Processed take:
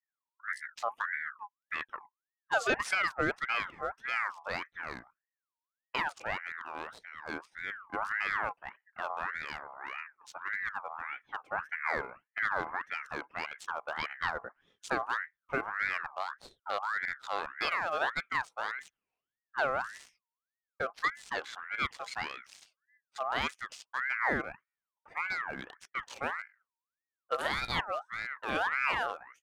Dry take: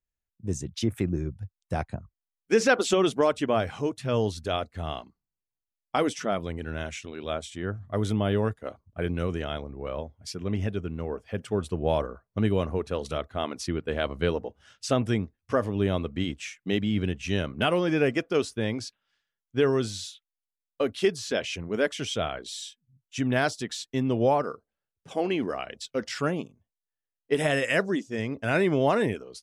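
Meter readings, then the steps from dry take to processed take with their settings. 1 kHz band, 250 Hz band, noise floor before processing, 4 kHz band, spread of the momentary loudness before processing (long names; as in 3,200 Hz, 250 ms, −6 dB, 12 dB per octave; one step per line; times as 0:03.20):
−1.0 dB, −19.0 dB, below −85 dBFS, −7.5 dB, 12 LU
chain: adaptive Wiener filter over 15 samples
buffer that repeats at 0:24.67, samples 512, times 6
ring modulator whose carrier an LFO sweeps 1,400 Hz, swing 35%, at 1.7 Hz
level −5 dB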